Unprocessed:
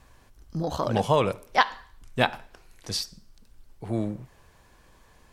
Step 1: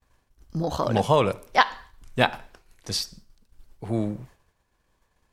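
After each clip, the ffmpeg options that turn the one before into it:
-af "agate=range=-33dB:threshold=-45dB:ratio=3:detection=peak,volume=2dB"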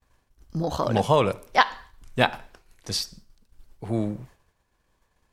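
-af anull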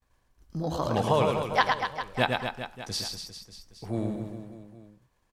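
-af "aecho=1:1:110|242|400.4|590.5|818.6:0.631|0.398|0.251|0.158|0.1,volume=-5dB"

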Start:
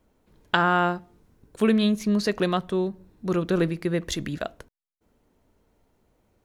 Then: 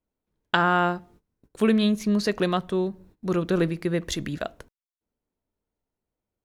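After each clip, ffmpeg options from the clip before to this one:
-af "agate=range=-20dB:threshold=-52dB:ratio=16:detection=peak"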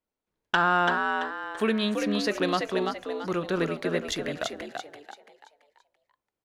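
-filter_complex "[0:a]asplit=2[a][b];[b]highpass=f=720:p=1,volume=10dB,asoftclip=type=tanh:threshold=-4dB[c];[a][c]amix=inputs=2:normalize=0,lowpass=f=4.9k:p=1,volume=-6dB,asplit=6[d][e][f][g][h][i];[e]adelay=336,afreqshift=73,volume=-4.5dB[j];[f]adelay=672,afreqshift=146,volume=-13.1dB[k];[g]adelay=1008,afreqshift=219,volume=-21.8dB[l];[h]adelay=1344,afreqshift=292,volume=-30.4dB[m];[i]adelay=1680,afreqshift=365,volume=-39dB[n];[d][j][k][l][m][n]amix=inputs=6:normalize=0,volume=-4.5dB"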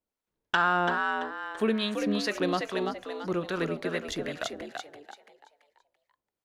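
-filter_complex "[0:a]acrossover=split=810[a][b];[a]aeval=exprs='val(0)*(1-0.5/2+0.5/2*cos(2*PI*2.4*n/s))':c=same[c];[b]aeval=exprs='val(0)*(1-0.5/2-0.5/2*cos(2*PI*2.4*n/s))':c=same[d];[c][d]amix=inputs=2:normalize=0"

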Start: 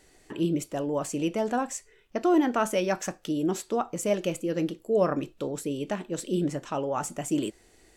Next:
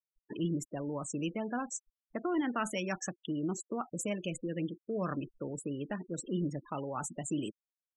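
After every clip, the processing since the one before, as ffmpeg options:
-filter_complex "[0:a]afftfilt=real='re*gte(hypot(re,im),0.0224)':imag='im*gte(hypot(re,im),0.0224)':win_size=1024:overlap=0.75,acrossover=split=270|1100[a][b][c];[b]acompressor=threshold=-38dB:ratio=6[d];[a][d][c]amix=inputs=3:normalize=0,volume=-3dB"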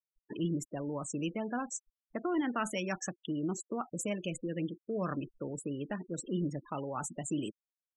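-af anull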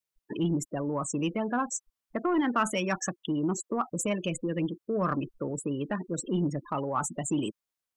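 -af "aeval=exprs='0.0944*(cos(1*acos(clip(val(0)/0.0944,-1,1)))-cos(1*PI/2))+0.00211*(cos(2*acos(clip(val(0)/0.0944,-1,1)))-cos(2*PI/2))+0.00422*(cos(5*acos(clip(val(0)/0.0944,-1,1)))-cos(5*PI/2))':c=same,adynamicequalizer=threshold=0.00251:dfrequency=1100:dqfactor=3:tfrequency=1100:tqfactor=3:attack=5:release=100:ratio=0.375:range=3:mode=boostabove:tftype=bell,volume=4.5dB"

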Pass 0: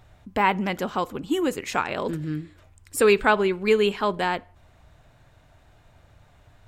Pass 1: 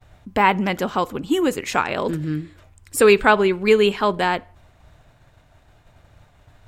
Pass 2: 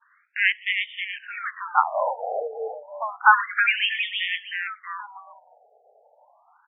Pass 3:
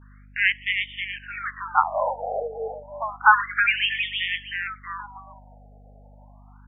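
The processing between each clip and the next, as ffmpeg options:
-af "agate=range=-33dB:threshold=-51dB:ratio=3:detection=peak,volume=4.5dB"
-filter_complex "[0:a]asplit=5[a][b][c][d][e];[b]adelay=320,afreqshift=140,volume=-6dB[f];[c]adelay=640,afreqshift=280,volume=-14.9dB[g];[d]adelay=960,afreqshift=420,volume=-23.7dB[h];[e]adelay=1280,afreqshift=560,volume=-32.6dB[i];[a][f][g][h][i]amix=inputs=5:normalize=0,afftfilt=real='re*between(b*sr/1024,580*pow(2600/580,0.5+0.5*sin(2*PI*0.3*pts/sr))/1.41,580*pow(2600/580,0.5+0.5*sin(2*PI*0.3*pts/sr))*1.41)':imag='im*between(b*sr/1024,580*pow(2600/580,0.5+0.5*sin(2*PI*0.3*pts/sr))/1.41,580*pow(2600/580,0.5+0.5*sin(2*PI*0.3*pts/sr))*1.41)':win_size=1024:overlap=0.75,volume=3dB"
-af "aeval=exprs='val(0)+0.00398*(sin(2*PI*50*n/s)+sin(2*PI*2*50*n/s)/2+sin(2*PI*3*50*n/s)/3+sin(2*PI*4*50*n/s)/4+sin(2*PI*5*50*n/s)/5)':c=same"

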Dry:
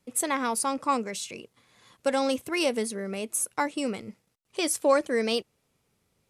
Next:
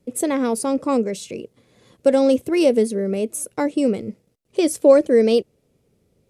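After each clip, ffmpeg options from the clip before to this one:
-af "lowshelf=f=700:t=q:w=1.5:g=10"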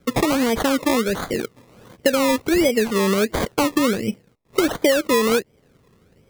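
-af "acompressor=threshold=-23dB:ratio=6,acrusher=samples=23:mix=1:aa=0.000001:lfo=1:lforange=13.8:lforate=1.4,volume=7.5dB"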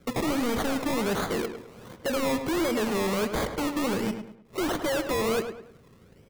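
-filter_complex "[0:a]volume=25.5dB,asoftclip=hard,volume=-25.5dB,asplit=2[a][b];[b]adelay=104,lowpass=f=2.9k:p=1,volume=-8dB,asplit=2[c][d];[d]adelay=104,lowpass=f=2.9k:p=1,volume=0.38,asplit=2[e][f];[f]adelay=104,lowpass=f=2.9k:p=1,volume=0.38,asplit=2[g][h];[h]adelay=104,lowpass=f=2.9k:p=1,volume=0.38[i];[c][e][g][i]amix=inputs=4:normalize=0[j];[a][j]amix=inputs=2:normalize=0"

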